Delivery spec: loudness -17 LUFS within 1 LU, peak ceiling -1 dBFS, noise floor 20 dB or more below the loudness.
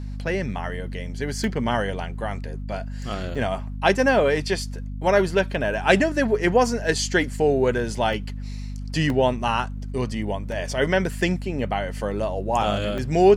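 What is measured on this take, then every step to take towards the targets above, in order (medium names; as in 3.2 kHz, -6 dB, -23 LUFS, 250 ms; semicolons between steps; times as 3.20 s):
dropouts 6; longest dropout 1.9 ms; hum 50 Hz; highest harmonic 250 Hz; hum level -29 dBFS; loudness -23.5 LUFS; peak level -2.5 dBFS; loudness target -17.0 LUFS
-> interpolate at 1.44/3.35/8.13/9.10/10.52/12.98 s, 1.9 ms; hum notches 50/100/150/200/250 Hz; trim +6.5 dB; peak limiter -1 dBFS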